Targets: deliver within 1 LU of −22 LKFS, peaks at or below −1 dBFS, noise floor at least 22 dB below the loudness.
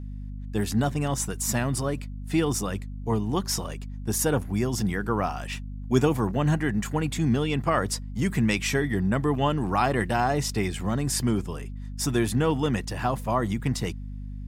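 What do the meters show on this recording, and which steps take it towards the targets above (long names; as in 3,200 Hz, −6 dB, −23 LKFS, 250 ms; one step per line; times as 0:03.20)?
mains hum 50 Hz; hum harmonics up to 250 Hz; level of the hum −34 dBFS; integrated loudness −26.5 LKFS; sample peak −8.5 dBFS; target loudness −22.0 LKFS
→ mains-hum notches 50/100/150/200/250 Hz
level +4.5 dB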